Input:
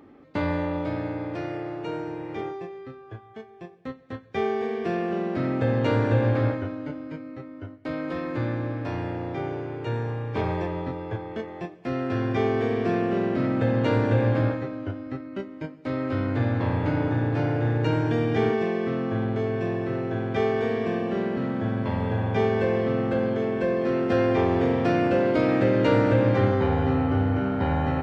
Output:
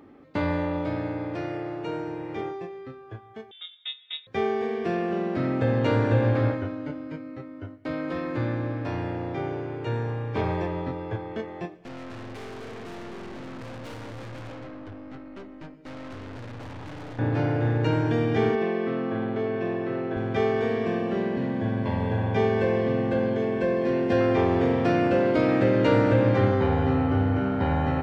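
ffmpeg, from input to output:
ffmpeg -i in.wav -filter_complex "[0:a]asettb=1/sr,asplit=3[link_01][link_02][link_03];[link_01]atrim=end=3.514[link_04];[link_02]atrim=start=3.51:end=4.27,asetpts=PTS-STARTPTS,afade=type=in:duration=0.004:curve=qsin,afade=type=out:start_time=0.756:duration=0.004:curve=qsin,lowpass=frequency=3300:width_type=q:width=0.5098,lowpass=frequency=3300:width_type=q:width=0.6013,lowpass=frequency=3300:width_type=q:width=0.9,lowpass=frequency=3300:width_type=q:width=2.563,afreqshift=-3900[link_05];[link_03]atrim=start=4.266[link_06];[link_04][link_05]acrossfade=duration=0.004:curve1=hsin:curve2=qsin[link_07];[link_07][link_06]acrossfade=duration=0.004:curve1=qsin:curve2=hsin,asettb=1/sr,asplit=3[link_08][link_09][link_10];[link_08]atrim=end=11.774[link_11];[link_09]atrim=start=11.77:end=17.19,asetpts=PTS-STARTPTS,afade=type=in:duration=0.004:curve=qsin,afade=type=out:start_time=5.416:duration=0.004:curve=qsin,aeval=exprs='(tanh(79.4*val(0)+0.45)-tanh(0.45))/79.4':channel_layout=same[link_12];[link_10]atrim=start=17.186[link_13];[link_11][link_12]acrossfade=duration=0.004:curve1=hsin:curve2=qsin[link_14];[link_14][link_13]acrossfade=duration=0.004:curve1=qsin:curve2=hsin,asettb=1/sr,asplit=3[link_15][link_16][link_17];[link_15]atrim=end=18.554[link_18];[link_16]atrim=start=18.55:end=20.17,asetpts=PTS-STARTPTS,afade=type=in:duration=0.004:curve=qsin,afade=type=out:start_time=1.616:duration=0.004:curve=qsin,highpass=170,lowpass=4200[link_19];[link_17]atrim=start=20.166[link_20];[link_18][link_19]acrossfade=duration=0.004:curve1=hsin:curve2=qsin[link_21];[link_21][link_20]acrossfade=duration=0.004:curve1=qsin:curve2=hsin,asettb=1/sr,asplit=3[link_22][link_23][link_24];[link_22]atrim=end=21.154[link_25];[link_23]atrim=start=21.15:end=24.21,asetpts=PTS-STARTPTS,afade=type=in:duration=0.004:curve=qsin,afade=type=out:start_time=3.056:duration=0.004:curve=qsin,asuperstop=centerf=1300:order=8:qfactor=6.7[link_26];[link_24]atrim=start=24.206[link_27];[link_25][link_26]acrossfade=duration=0.004:curve1=hsin:curve2=qsin[link_28];[link_28][link_27]acrossfade=duration=0.004:curve1=qsin:curve2=hsin" out.wav

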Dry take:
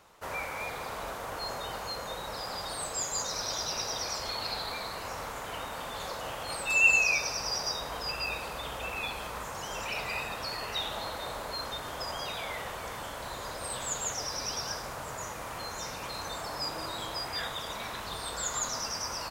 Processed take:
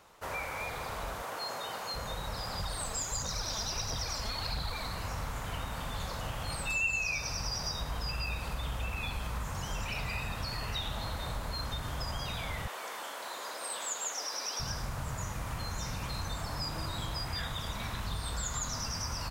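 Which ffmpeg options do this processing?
ffmpeg -i in.wav -filter_complex "[0:a]asettb=1/sr,asplit=3[link_01][link_02][link_03];[link_01]atrim=end=1.224[link_04];[link_02]atrim=start=1.22:end=1.94,asetpts=PTS-STARTPTS,afade=type=in:duration=0.004:curve=qsin,afade=type=out:start_time=0.716:duration=0.004:curve=qsin,highpass=270[link_05];[link_03]atrim=start=1.936[link_06];[link_04][link_05]acrossfade=duration=0.004:curve1=hsin:curve2=qsin[link_07];[link_07][link_06]acrossfade=duration=0.004:curve1=qsin:curve2=hsin,asettb=1/sr,asplit=3[link_08][link_09][link_10];[link_08]atrim=end=2.594[link_11];[link_09]atrim=start=2.59:end=4.87,asetpts=PTS-STARTPTS,afade=type=in:duration=0.004:curve=qsin,afade=type=out:start_time=2.276:duration=0.004:curve=qsin,aphaser=in_gain=1:out_gain=1:delay=4.9:decay=0.46:speed=1.5:type=triangular[link_12];[link_10]atrim=start=4.866[link_13];[link_11][link_12]acrossfade=duration=0.004:curve1=hsin:curve2=qsin[link_14];[link_14][link_13]acrossfade=duration=0.004:curve1=qsin:curve2=hsin,asettb=1/sr,asplit=3[link_15][link_16][link_17];[link_15]atrim=end=12.674[link_18];[link_16]atrim=start=12.67:end=14.6,asetpts=PTS-STARTPTS,afade=type=in:duration=0.004:curve=qsin,afade=type=out:start_time=1.926:duration=0.004:curve=qsin,highpass=frequency=360:width=0.5412,highpass=frequency=360:width=1.3066[link_19];[link_17]atrim=start=14.596[link_20];[link_18][link_19]acrossfade=duration=0.004:curve1=hsin:curve2=qsin[link_21];[link_21][link_20]acrossfade=duration=0.004:curve1=qsin:curve2=hsin,asubboost=boost=6:cutoff=170,acompressor=threshold=-33dB:ratio=2.5" out.wav

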